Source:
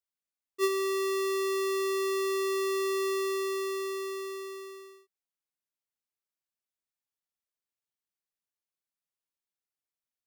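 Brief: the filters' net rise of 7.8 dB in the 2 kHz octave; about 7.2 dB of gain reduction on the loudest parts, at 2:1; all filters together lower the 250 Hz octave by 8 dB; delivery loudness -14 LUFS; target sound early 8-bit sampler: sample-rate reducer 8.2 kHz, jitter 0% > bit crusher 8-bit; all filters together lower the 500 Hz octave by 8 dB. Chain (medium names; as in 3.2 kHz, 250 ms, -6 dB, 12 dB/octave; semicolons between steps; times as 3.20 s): peaking EQ 250 Hz -8 dB; peaking EQ 500 Hz -8 dB; peaking EQ 2 kHz +9 dB; compression 2:1, threshold -37 dBFS; sample-rate reducer 8.2 kHz, jitter 0%; bit crusher 8-bit; trim +22 dB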